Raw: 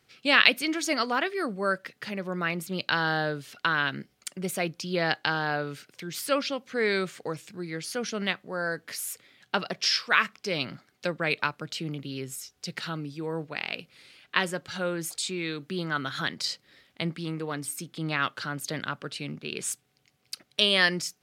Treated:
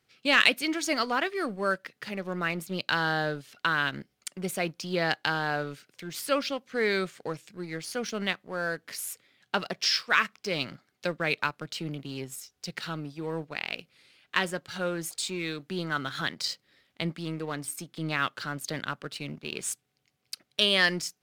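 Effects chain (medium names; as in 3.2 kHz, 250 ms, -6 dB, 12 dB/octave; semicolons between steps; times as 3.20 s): waveshaping leveller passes 1; trim -4.5 dB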